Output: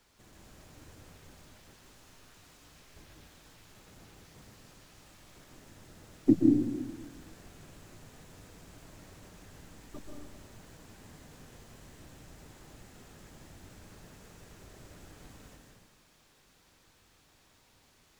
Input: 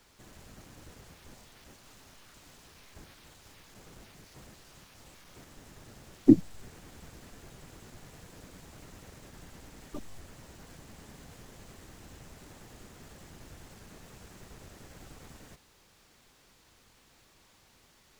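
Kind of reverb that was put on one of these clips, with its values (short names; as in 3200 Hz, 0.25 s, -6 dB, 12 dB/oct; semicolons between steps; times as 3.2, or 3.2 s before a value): plate-style reverb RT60 1.4 s, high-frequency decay 0.95×, pre-delay 0.115 s, DRR 0 dB; gain -5 dB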